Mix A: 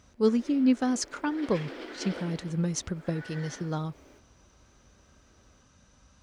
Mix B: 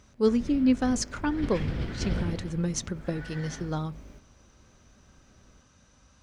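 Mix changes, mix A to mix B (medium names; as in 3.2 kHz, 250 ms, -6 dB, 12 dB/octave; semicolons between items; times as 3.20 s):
background: remove steep high-pass 280 Hz 48 dB/octave; reverb: on, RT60 0.45 s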